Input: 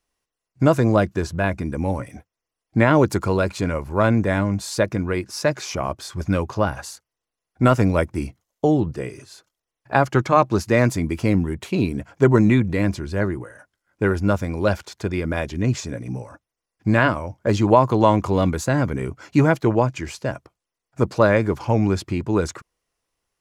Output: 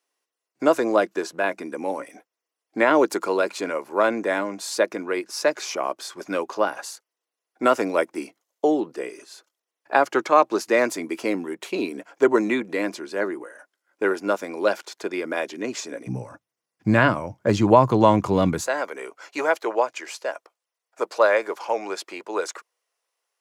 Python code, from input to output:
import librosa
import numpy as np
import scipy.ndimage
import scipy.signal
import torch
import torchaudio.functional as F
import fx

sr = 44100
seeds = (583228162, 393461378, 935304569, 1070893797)

y = fx.highpass(x, sr, hz=fx.steps((0.0, 310.0), (16.07, 110.0), (18.67, 460.0)), slope=24)